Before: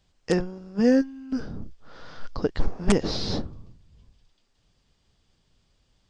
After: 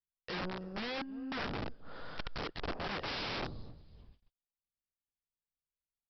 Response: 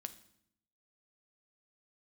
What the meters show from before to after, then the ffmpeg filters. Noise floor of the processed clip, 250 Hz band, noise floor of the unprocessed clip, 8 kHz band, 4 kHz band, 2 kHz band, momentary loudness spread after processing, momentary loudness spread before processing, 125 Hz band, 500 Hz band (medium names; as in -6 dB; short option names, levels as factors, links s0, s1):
under -85 dBFS, -18.0 dB, -69 dBFS, -21.5 dB, -5.5 dB, -2.5 dB, 11 LU, 20 LU, -13.0 dB, -15.5 dB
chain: -filter_complex "[0:a]adynamicequalizer=threshold=0.0126:dfrequency=620:dqfactor=1.1:tfrequency=620:tqfactor=1.1:attack=5:release=100:ratio=0.375:range=2.5:mode=boostabove:tftype=bell,acompressor=threshold=0.0708:ratio=8,asoftclip=type=tanh:threshold=0.0398,asplit=2[s0][s1];[s1]aecho=0:1:326|652:0.0708|0.0184[s2];[s0][s2]amix=inputs=2:normalize=0,agate=range=0.0141:threshold=0.00178:ratio=16:detection=peak,aresample=11025,aeval=exprs='(mod(39.8*val(0)+1,2)-1)/39.8':c=same,aresample=44100,bass=f=250:g=-1,treble=f=4000:g=-4,volume=0.841"